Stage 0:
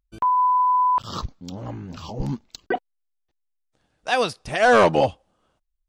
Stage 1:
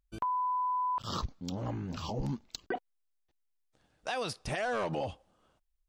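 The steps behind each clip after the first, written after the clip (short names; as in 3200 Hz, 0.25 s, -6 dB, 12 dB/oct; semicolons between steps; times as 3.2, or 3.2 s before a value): limiter -20.5 dBFS, peak gain reduction 11 dB; compressor, threshold -28 dBFS, peak gain reduction 5.5 dB; gain -2 dB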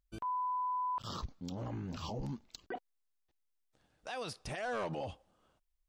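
limiter -29.5 dBFS, peak gain reduction 7 dB; gain -2.5 dB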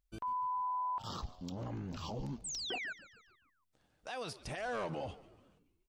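painted sound fall, 2.44–2.93, 1400–8700 Hz -40 dBFS; frequency-shifting echo 0.143 s, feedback 54%, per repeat -91 Hz, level -17.5 dB; gain -1 dB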